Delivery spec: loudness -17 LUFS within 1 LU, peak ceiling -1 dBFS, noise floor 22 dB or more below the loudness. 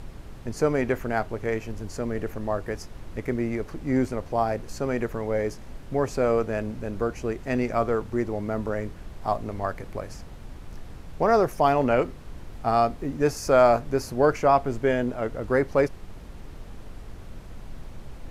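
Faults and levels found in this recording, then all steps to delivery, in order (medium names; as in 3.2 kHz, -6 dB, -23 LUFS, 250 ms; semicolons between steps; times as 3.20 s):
noise floor -42 dBFS; noise floor target -48 dBFS; loudness -26.0 LUFS; peak level -7.0 dBFS; loudness target -17.0 LUFS
-> noise print and reduce 6 dB; trim +9 dB; peak limiter -1 dBFS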